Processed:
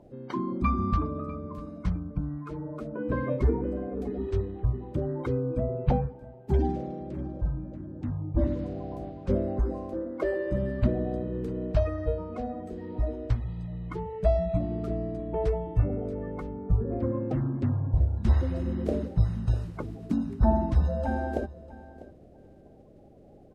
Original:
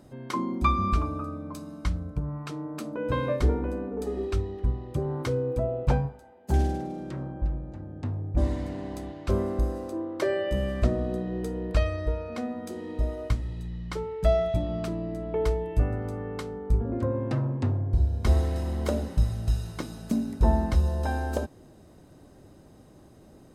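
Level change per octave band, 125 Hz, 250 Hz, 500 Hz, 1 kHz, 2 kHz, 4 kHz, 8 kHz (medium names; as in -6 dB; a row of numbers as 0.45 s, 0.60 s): -0.5 dB, +1.0 dB, -1.0 dB, -2.5 dB, -4.5 dB, under -10 dB, under -15 dB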